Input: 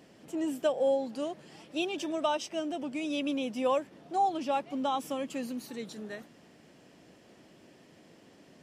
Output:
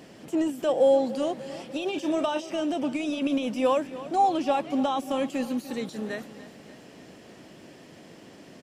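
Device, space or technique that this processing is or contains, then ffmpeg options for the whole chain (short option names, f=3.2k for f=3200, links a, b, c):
de-esser from a sidechain: -filter_complex "[0:a]asettb=1/sr,asplit=3[a][b][c];[a]atrim=end=1.874[d];[b]atrim=start=1.87:end=2.61,asetpts=PTS-STARTPTS,afade=t=in:d=0.004:c=qsin,afade=t=out:st=0.736:d=0.004:c=qsin,asplit=2[e][f];[f]adelay=33,volume=-12dB[g];[e][g]amix=inputs=2:normalize=0,atrim=end_sample=32634[h];[c]atrim=start=2.606[i];[d][h]acrossfade=d=0.004:c1=hsin:c2=qsin[j];[j][i]acrossfade=d=0.004:c1=qsin:c2=hsin,asplit=2[k][l];[l]highpass=6.2k,apad=whole_len=380226[m];[k][m]sidechaincompress=threshold=-57dB:ratio=8:attack=3.2:release=25,aecho=1:1:294|588|882|1176|1470|1764:0.158|0.0919|0.0533|0.0309|0.0179|0.0104,volume=8.5dB"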